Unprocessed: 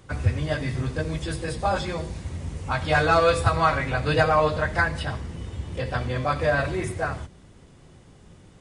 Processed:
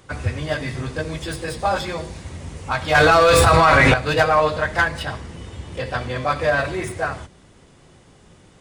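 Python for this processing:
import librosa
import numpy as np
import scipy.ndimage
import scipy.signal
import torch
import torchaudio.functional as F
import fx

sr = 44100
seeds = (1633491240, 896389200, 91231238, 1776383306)

y = fx.tracing_dist(x, sr, depth_ms=0.04)
y = fx.low_shelf(y, sr, hz=270.0, db=-7.0)
y = fx.env_flatten(y, sr, amount_pct=100, at=(2.95, 3.94))
y = y * 10.0 ** (4.5 / 20.0)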